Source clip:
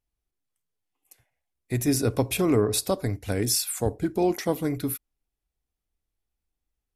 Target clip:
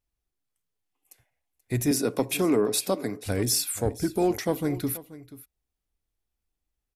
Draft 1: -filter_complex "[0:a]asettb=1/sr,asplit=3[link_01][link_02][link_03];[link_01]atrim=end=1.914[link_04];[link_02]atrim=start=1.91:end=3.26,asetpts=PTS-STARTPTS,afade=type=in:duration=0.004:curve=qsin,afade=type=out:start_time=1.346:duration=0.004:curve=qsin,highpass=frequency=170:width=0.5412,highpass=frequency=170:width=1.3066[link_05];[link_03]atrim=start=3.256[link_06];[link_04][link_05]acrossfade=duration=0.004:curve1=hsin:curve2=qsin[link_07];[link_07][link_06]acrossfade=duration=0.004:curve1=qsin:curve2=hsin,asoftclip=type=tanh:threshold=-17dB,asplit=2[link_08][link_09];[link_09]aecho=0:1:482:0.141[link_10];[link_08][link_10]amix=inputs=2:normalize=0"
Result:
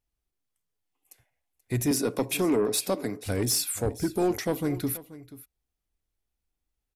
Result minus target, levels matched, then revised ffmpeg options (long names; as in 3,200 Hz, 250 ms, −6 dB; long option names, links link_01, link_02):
soft clipping: distortion +10 dB
-filter_complex "[0:a]asettb=1/sr,asplit=3[link_01][link_02][link_03];[link_01]atrim=end=1.914[link_04];[link_02]atrim=start=1.91:end=3.26,asetpts=PTS-STARTPTS,afade=type=in:duration=0.004:curve=qsin,afade=type=out:start_time=1.346:duration=0.004:curve=qsin,highpass=frequency=170:width=0.5412,highpass=frequency=170:width=1.3066[link_05];[link_03]atrim=start=3.256[link_06];[link_04][link_05]acrossfade=duration=0.004:curve1=hsin:curve2=qsin[link_07];[link_07][link_06]acrossfade=duration=0.004:curve1=qsin:curve2=hsin,asoftclip=type=tanh:threshold=-10.5dB,asplit=2[link_08][link_09];[link_09]aecho=0:1:482:0.141[link_10];[link_08][link_10]amix=inputs=2:normalize=0"